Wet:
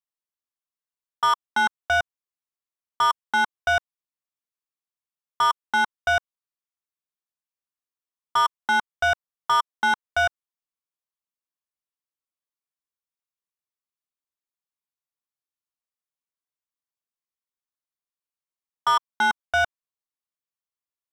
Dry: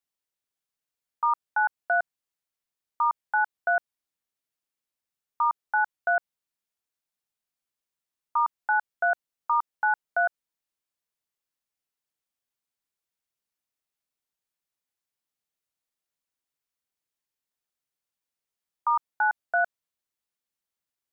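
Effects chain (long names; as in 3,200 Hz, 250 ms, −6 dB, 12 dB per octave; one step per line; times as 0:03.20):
parametric band 1,100 Hz +7 dB 0.38 octaves
leveller curve on the samples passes 3
level −3.5 dB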